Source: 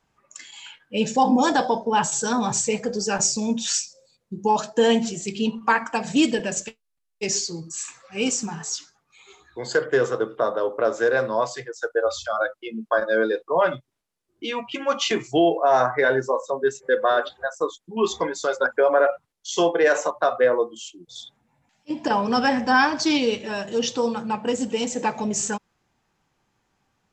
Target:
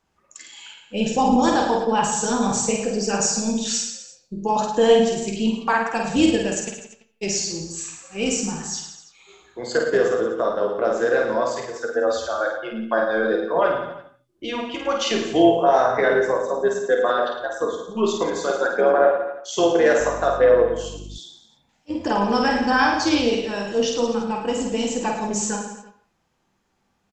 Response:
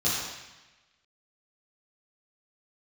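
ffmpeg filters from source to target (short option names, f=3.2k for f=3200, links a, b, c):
-filter_complex "[0:a]tremolo=f=220:d=0.4,aecho=1:1:50|107.5|173.6|249.7|337.1:0.631|0.398|0.251|0.158|0.1,asplit=2[a][b];[1:a]atrim=start_sample=2205,afade=t=out:st=0.23:d=0.01,atrim=end_sample=10584,lowpass=3.7k[c];[b][c]afir=irnorm=-1:irlink=0,volume=-19dB[d];[a][d]amix=inputs=2:normalize=0,asettb=1/sr,asplit=3[e][f][g];[e]atrim=end=20.004[h];[f]atrim=start=20:end=21.18,asetpts=PTS-STARTPTS,afade=t=in:d=0.004:c=qsin,afade=t=out:st=1.176:d=0.004:c=qsin,aeval=exprs='val(0)+0.0178*(sin(2*PI*50*n/s)+sin(2*PI*2*50*n/s)/2+sin(2*PI*3*50*n/s)/3+sin(2*PI*4*50*n/s)/4+sin(2*PI*5*50*n/s)/5)':c=same[i];[g]atrim=start=21.176[j];[h][i]acrossfade=d=0.004:c1=hsin:c2=qsin[k];[k][j]acrossfade=d=0.004:c1=qsin:c2=hsin"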